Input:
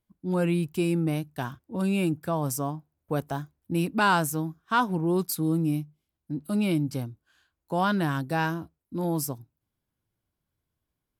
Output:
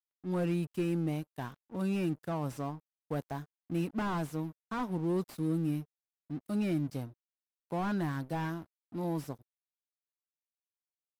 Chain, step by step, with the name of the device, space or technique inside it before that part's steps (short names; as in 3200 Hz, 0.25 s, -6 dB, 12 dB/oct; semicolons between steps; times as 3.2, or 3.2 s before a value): early transistor amplifier (crossover distortion -46 dBFS; slew limiter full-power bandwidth 39 Hz); gain -5.5 dB